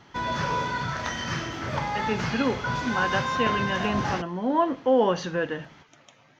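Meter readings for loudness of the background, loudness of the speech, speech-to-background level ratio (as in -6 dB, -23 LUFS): -28.5 LUFS, -27.0 LUFS, 1.5 dB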